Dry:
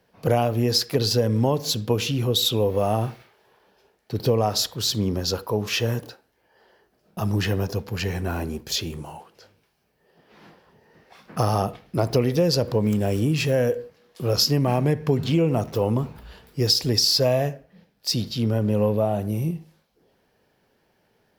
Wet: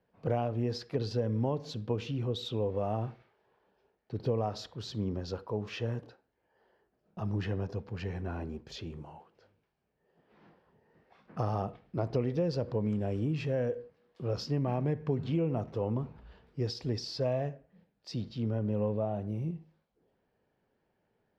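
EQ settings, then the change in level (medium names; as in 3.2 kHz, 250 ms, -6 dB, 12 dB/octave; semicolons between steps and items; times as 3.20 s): tape spacing loss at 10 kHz 25 dB; -9.0 dB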